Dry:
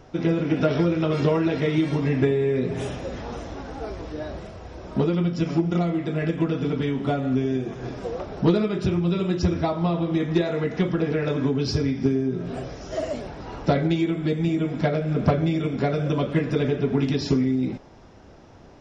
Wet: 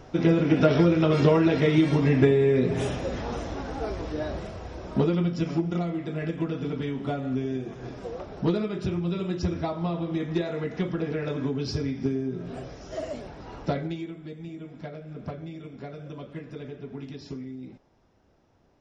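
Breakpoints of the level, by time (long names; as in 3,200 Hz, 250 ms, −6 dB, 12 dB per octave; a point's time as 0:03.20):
0:04.57 +1.5 dB
0:05.85 −5.5 dB
0:13.63 −5.5 dB
0:14.24 −16 dB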